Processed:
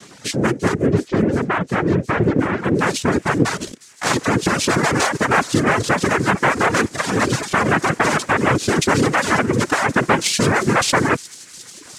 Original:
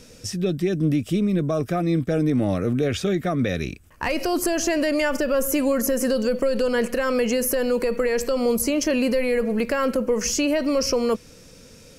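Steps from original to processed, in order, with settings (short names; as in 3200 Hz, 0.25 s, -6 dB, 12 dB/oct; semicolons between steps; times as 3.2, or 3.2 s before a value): 6.88–7.41 minimum comb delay 8.7 ms; noise vocoder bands 3; reverb removal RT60 1.1 s; in parallel at -7 dB: hard clip -18.5 dBFS, distortion -13 dB; 0.74–2.64 on the sum: air absorption 190 m; on a send: thin delay 0.357 s, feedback 83%, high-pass 5500 Hz, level -13 dB; on the sum: gain +3.5 dB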